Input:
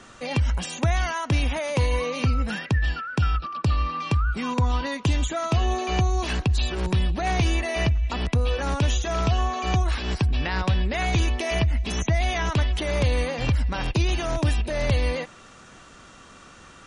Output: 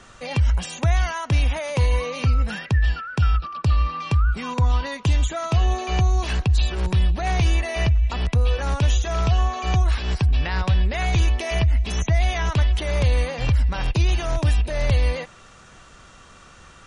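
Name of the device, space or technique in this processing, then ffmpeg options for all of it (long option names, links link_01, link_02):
low shelf boost with a cut just above: -af "lowshelf=frequency=89:gain=7,equalizer=frequency=270:width_type=o:width=0.84:gain=-5.5"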